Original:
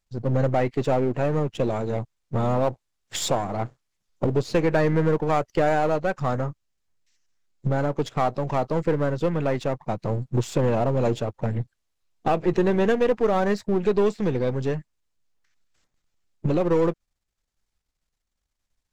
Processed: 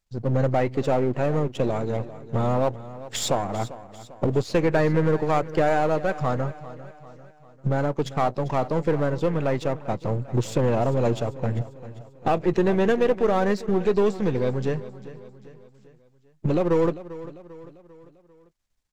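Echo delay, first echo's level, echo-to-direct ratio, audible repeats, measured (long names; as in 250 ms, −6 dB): 396 ms, −16.0 dB, −15.0 dB, 4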